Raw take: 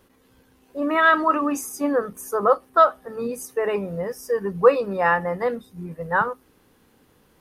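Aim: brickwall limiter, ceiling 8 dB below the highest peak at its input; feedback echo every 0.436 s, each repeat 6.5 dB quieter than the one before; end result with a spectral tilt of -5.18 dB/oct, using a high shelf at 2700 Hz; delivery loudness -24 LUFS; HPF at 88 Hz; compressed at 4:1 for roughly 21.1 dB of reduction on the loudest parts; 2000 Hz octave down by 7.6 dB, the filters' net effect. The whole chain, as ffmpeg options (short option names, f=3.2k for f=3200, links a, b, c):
-af "highpass=88,equalizer=f=2k:t=o:g=-7,highshelf=f=2.7k:g=-8.5,acompressor=threshold=-36dB:ratio=4,alimiter=level_in=6dB:limit=-24dB:level=0:latency=1,volume=-6dB,aecho=1:1:436|872|1308|1744|2180|2616:0.473|0.222|0.105|0.0491|0.0231|0.0109,volume=15dB"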